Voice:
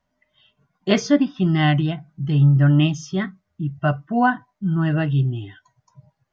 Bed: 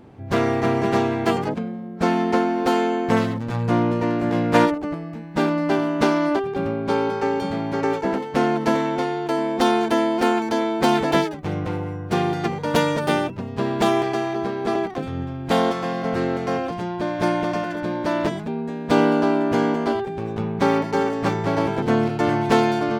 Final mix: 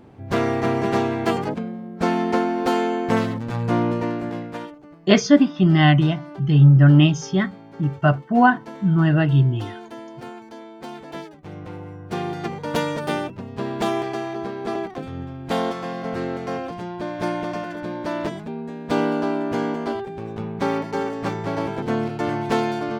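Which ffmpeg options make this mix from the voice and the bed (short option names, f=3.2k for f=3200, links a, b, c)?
-filter_complex "[0:a]adelay=4200,volume=3dB[a];[1:a]volume=13dB,afade=t=out:st=3.93:d=0.65:silence=0.141254,afade=t=in:st=11.05:d=1.49:silence=0.199526[b];[a][b]amix=inputs=2:normalize=0"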